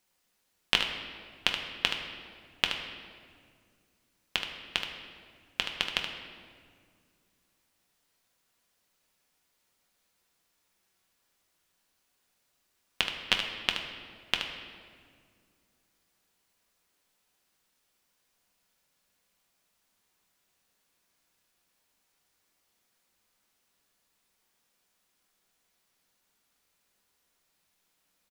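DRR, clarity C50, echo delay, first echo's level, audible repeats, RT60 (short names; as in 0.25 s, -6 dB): 1.0 dB, 4.0 dB, 75 ms, -8.0 dB, 1, 2.1 s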